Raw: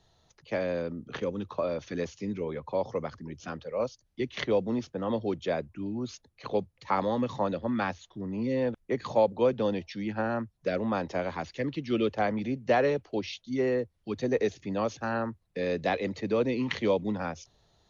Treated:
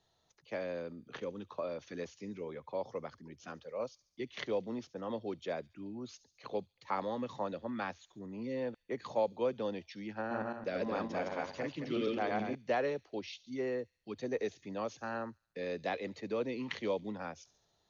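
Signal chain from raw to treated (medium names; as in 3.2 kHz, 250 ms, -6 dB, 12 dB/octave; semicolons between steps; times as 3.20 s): 10.20–12.55 s: backward echo that repeats 110 ms, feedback 45%, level -0.5 dB; bass shelf 140 Hz -10 dB; feedback echo behind a high-pass 70 ms, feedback 58%, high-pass 4.8 kHz, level -14 dB; trim -7.5 dB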